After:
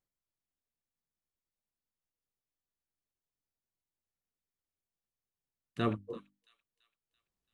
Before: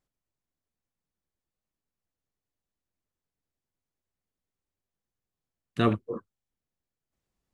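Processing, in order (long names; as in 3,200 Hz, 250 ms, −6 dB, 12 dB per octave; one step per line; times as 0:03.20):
mains-hum notches 50/100/150/200/250/300 Hz
delay with a high-pass on its return 336 ms, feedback 50%, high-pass 3,400 Hz, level −15 dB
level −7.5 dB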